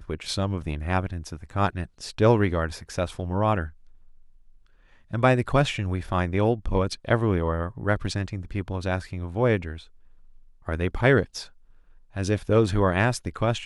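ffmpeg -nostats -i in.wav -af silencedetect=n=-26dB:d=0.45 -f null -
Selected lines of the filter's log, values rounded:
silence_start: 3.65
silence_end: 5.13 | silence_duration: 1.49
silence_start: 9.73
silence_end: 10.69 | silence_duration: 0.96
silence_start: 11.40
silence_end: 12.17 | silence_duration: 0.77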